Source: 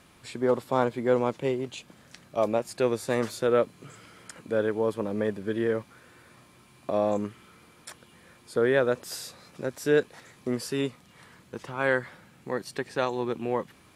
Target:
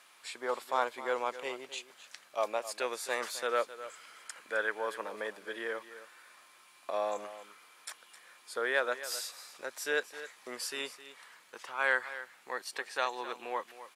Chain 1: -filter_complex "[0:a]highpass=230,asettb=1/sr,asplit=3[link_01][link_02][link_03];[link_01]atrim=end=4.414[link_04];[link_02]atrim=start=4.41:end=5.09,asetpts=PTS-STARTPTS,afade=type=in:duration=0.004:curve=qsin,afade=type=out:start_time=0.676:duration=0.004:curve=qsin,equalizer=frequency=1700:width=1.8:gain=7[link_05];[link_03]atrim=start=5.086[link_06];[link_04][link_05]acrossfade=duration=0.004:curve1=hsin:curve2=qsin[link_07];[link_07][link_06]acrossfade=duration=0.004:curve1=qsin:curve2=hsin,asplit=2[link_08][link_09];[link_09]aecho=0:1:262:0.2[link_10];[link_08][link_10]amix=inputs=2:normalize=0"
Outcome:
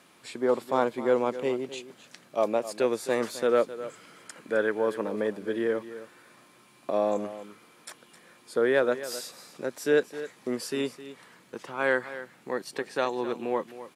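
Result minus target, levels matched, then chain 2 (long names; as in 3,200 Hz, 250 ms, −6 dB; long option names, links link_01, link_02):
250 Hz band +10.5 dB
-filter_complex "[0:a]highpass=890,asettb=1/sr,asplit=3[link_01][link_02][link_03];[link_01]atrim=end=4.414[link_04];[link_02]atrim=start=4.41:end=5.09,asetpts=PTS-STARTPTS,afade=type=in:duration=0.004:curve=qsin,afade=type=out:start_time=0.676:duration=0.004:curve=qsin,equalizer=frequency=1700:width=1.8:gain=7[link_05];[link_03]atrim=start=5.086[link_06];[link_04][link_05]acrossfade=duration=0.004:curve1=hsin:curve2=qsin[link_07];[link_07][link_06]acrossfade=duration=0.004:curve1=qsin:curve2=hsin,asplit=2[link_08][link_09];[link_09]aecho=0:1:262:0.2[link_10];[link_08][link_10]amix=inputs=2:normalize=0"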